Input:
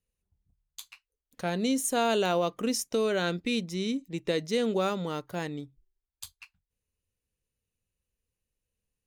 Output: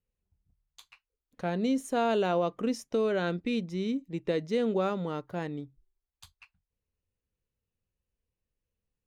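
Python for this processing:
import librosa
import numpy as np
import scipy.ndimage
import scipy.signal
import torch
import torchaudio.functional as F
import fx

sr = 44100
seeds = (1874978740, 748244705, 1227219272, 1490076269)

y = fx.lowpass(x, sr, hz=1600.0, slope=6)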